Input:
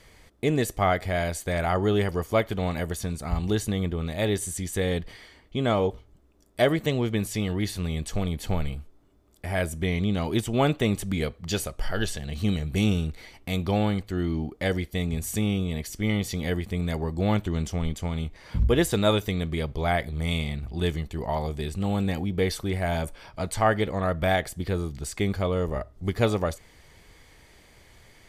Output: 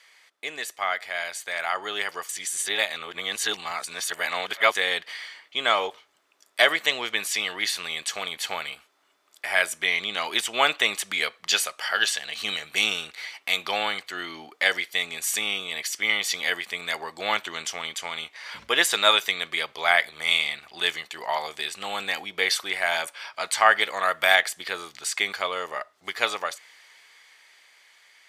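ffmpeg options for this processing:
-filter_complex "[0:a]asettb=1/sr,asplit=3[a][b][c];[a]atrim=end=23.814[d];[b]atrim=start=23.81:end=24.35,asetpts=PTS-STARTPTS,afade=t=in:d=0.004:c=qsin,afade=t=out:st=0.536:d=0.004:c=qsin,highshelf=f=7.6k:g=9[e];[c]atrim=start=24.346[f];[d][e]acrossfade=d=0.004:c1=hsin:c2=qsin[g];[g][f]acrossfade=d=0.004:c1=qsin:c2=hsin,asplit=3[h][i][j];[h]atrim=end=2.292[k];[i]atrim=start=2.288:end=4.752,asetpts=PTS-STARTPTS,areverse[l];[j]atrim=start=4.748[m];[k][l]acrossfade=d=0.004:c1=hsin:c2=hsin[n];[n][m]acrossfade=d=0.004:c1=hsin:c2=hsin,highpass=1.4k,highshelf=f=7.9k:g=-11,dynaudnorm=f=350:g=13:m=9dB,volume=4dB"

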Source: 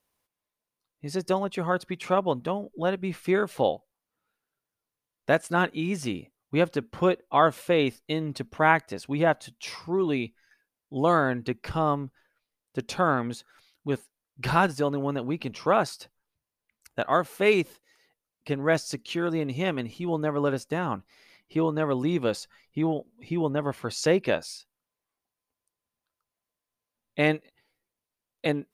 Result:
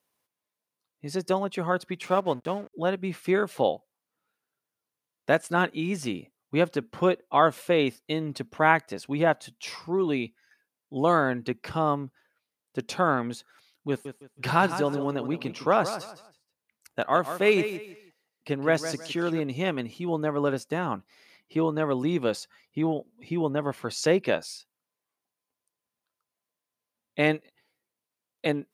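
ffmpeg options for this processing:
-filter_complex "[0:a]asettb=1/sr,asplit=3[a][b][c];[a]atrim=end=2.064[d];[b]atrim=start=2.06:end=2.73,asetpts=PTS-STARTPTS,afade=t=in:d=0.004:c=qsin,afade=t=out:st=0.666:d=0.004:c=qsin,aeval=exprs='sgn(val(0))*max(abs(val(0))-0.00596,0)':c=same[e];[c]atrim=start=2.726[f];[d][e]acrossfade=d=0.004:c1=hsin:c2=qsin[g];[g][f]acrossfade=d=0.004:c1=qsin:c2=hsin,asettb=1/sr,asplit=3[h][i][j];[h]atrim=end=13.894[k];[i]atrim=start=13.89:end=19.4,asetpts=PTS-STARTPTS,afade=t=in:d=0.004:c=qsin,afade=t=out:st=5.506:d=0.004:c=qsin,aecho=1:1:160|320|480:0.282|0.0761|0.0205,atrim=end_sample=242991[l];[j]atrim=start=19.396[m];[k][l]acrossfade=d=0.004:c1=hsin:c2=qsin[n];[n][m]acrossfade=d=0.004:c1=qsin:c2=hsin,highpass=120"

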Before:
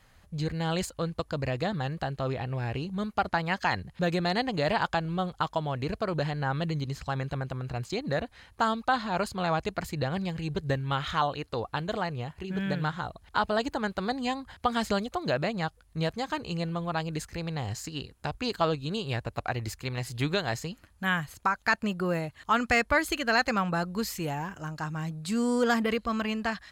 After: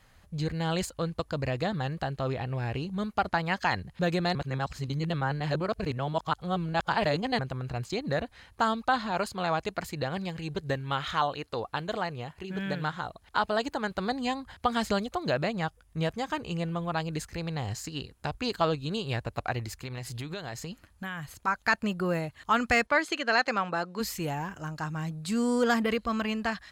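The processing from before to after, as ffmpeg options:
-filter_complex "[0:a]asettb=1/sr,asplit=3[a][b][c];[a]atrim=end=9.114[d];[b]atrim=start=9.11:end=13.91,asetpts=PTS-STARTPTS,afade=t=in:d=0.004:c=qsin,afade=t=out:st=4.796:d=0.004:c=qsin,lowshelf=f=170:g=-7[e];[c]atrim=start=13.906[f];[d][e]acrossfade=d=0.004:c1=hsin:c2=qsin[g];[g][f]acrossfade=d=0.004:c1=qsin:c2=hsin,asettb=1/sr,asplit=3[h][i][j];[h]atrim=end=15.574[k];[i]atrim=start=15.57:end=16.94,asetpts=PTS-STARTPTS,afade=t=in:d=0.004:c=qsin,afade=t=out:st=1.366:d=0.004:c=qsin,bandreject=f=4.2k:w=8.1[l];[j]atrim=start=16.936[m];[k][l]acrossfade=d=0.004:c1=hsin:c2=qsin[n];[n][m]acrossfade=d=0.004:c1=qsin:c2=hsin,asplit=3[o][p][q];[o]afade=t=out:st=19.62:d=0.02[r];[p]acompressor=threshold=-33dB:ratio=6:attack=3.2:release=140:knee=1:detection=peak,afade=t=in:st=19.62:d=0.02,afade=t=out:st=21.46:d=0.02[s];[q]afade=t=in:st=21.46:d=0.02[t];[r][s][t]amix=inputs=3:normalize=0,asplit=3[u][v][w];[u]afade=t=out:st=22.86:d=0.02[x];[v]highpass=280,lowpass=6.2k,afade=t=in:st=22.86:d=0.02,afade=t=out:st=23.99:d=0.02[y];[w]afade=t=in:st=23.99:d=0.02[z];[x][y][z]amix=inputs=3:normalize=0,asplit=3[aa][ab][ac];[aa]atrim=end=4.352[ad];[ab]atrim=start=4.348:end=7.392,asetpts=PTS-STARTPTS,areverse[ae];[ac]atrim=start=7.388[af];[ad][ae]acrossfade=d=0.004:c1=hsin:c2=hsin[ag];[ag][af]acrossfade=d=0.004:c1=hsin:c2=hsin"

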